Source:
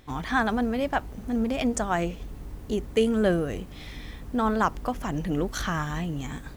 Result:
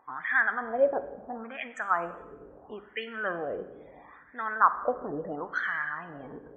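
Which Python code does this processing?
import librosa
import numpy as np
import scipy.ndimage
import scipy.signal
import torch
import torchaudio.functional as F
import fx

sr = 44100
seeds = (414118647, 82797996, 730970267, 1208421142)

y = fx.wah_lfo(x, sr, hz=0.74, low_hz=430.0, high_hz=1900.0, q=5.0)
y = fx.spec_topn(y, sr, count=64)
y = fx.rev_schroeder(y, sr, rt60_s=1.0, comb_ms=31, drr_db=11.5)
y = y * librosa.db_to_amplitude(8.5)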